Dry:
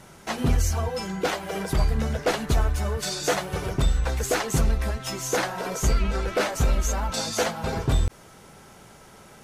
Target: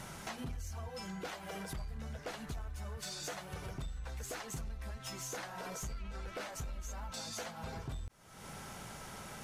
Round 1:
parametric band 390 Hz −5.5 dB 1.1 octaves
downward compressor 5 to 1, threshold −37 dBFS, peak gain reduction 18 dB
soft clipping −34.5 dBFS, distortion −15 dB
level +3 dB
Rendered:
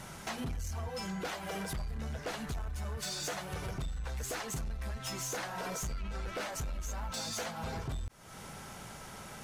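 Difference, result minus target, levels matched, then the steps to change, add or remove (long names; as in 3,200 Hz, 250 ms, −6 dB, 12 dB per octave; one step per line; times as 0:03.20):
downward compressor: peak gain reduction −6.5 dB
change: downward compressor 5 to 1, threshold −45 dBFS, peak gain reduction 24.5 dB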